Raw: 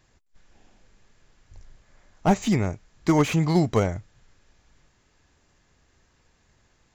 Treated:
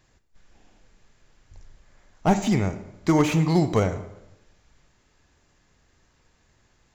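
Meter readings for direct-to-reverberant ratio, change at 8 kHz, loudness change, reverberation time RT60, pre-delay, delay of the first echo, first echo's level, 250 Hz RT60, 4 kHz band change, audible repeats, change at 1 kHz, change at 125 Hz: 10.5 dB, 0.0 dB, +0.5 dB, 0.90 s, 29 ms, none, none, 0.95 s, 0.0 dB, none, +0.5 dB, +0.5 dB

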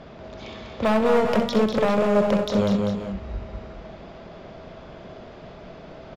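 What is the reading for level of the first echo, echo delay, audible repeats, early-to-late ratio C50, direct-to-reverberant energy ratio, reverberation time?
-9.0 dB, 65 ms, 4, none, none, none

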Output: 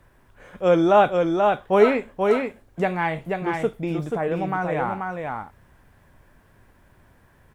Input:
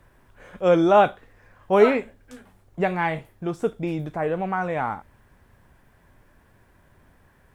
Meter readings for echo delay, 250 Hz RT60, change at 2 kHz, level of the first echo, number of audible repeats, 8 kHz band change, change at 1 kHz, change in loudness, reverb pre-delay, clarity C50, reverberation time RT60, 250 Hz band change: 0.484 s, none, +1.5 dB, -4.0 dB, 1, n/a, +1.5 dB, +0.5 dB, none, none, none, +1.5 dB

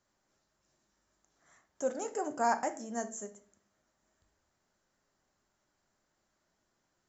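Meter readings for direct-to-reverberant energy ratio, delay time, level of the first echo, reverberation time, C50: 7.0 dB, none, none, 0.50 s, 13.5 dB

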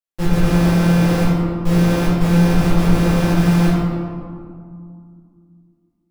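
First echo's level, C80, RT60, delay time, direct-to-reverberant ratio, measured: none, -0.5 dB, 2.2 s, none, -12.0 dB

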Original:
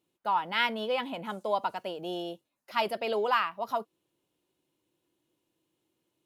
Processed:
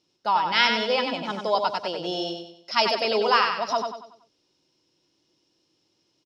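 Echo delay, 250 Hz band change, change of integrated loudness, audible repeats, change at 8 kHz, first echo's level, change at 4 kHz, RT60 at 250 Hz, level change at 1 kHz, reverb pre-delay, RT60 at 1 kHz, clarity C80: 94 ms, +6.0 dB, +7.5 dB, 4, n/a, -5.5 dB, +11.0 dB, none, +6.5 dB, none, none, none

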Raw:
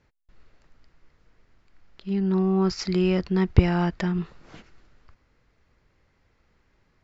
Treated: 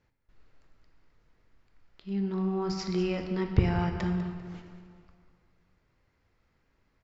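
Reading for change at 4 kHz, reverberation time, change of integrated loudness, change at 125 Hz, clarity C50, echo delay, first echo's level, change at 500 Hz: -6.0 dB, 2.1 s, -6.5 dB, -5.5 dB, 5.5 dB, 0.197 s, -12.5 dB, -6.0 dB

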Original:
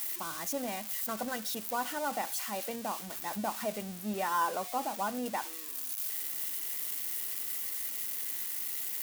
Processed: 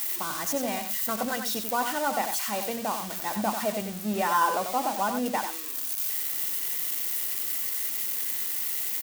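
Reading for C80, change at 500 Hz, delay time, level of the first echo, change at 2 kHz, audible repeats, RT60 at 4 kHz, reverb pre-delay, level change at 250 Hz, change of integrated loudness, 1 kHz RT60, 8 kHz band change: none, +6.5 dB, 92 ms, -7.5 dB, +7.0 dB, 1, none, none, +7.0 dB, +6.5 dB, none, +6.0 dB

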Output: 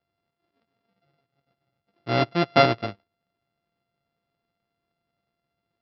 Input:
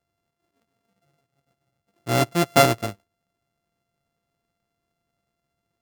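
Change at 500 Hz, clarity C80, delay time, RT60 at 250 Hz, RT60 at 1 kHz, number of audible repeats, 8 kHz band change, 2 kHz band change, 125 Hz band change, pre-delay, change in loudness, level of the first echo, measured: -1.0 dB, none, none, none, none, none, under -25 dB, -1.0 dB, -3.0 dB, none, -1.5 dB, none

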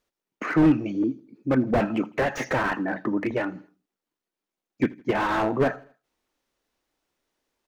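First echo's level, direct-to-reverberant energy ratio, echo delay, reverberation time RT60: -23.0 dB, none, 80 ms, none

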